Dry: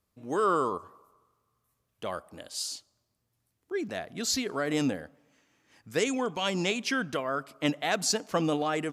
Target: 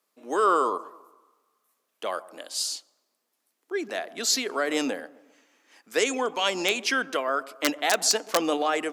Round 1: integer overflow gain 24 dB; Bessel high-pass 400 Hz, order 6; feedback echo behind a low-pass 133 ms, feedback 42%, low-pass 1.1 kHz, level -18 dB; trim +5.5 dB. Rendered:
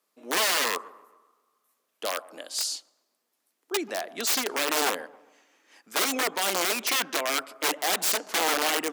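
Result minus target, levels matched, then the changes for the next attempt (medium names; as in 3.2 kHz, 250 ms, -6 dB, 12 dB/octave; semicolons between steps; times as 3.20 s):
integer overflow: distortion +25 dB
change: integer overflow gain 15 dB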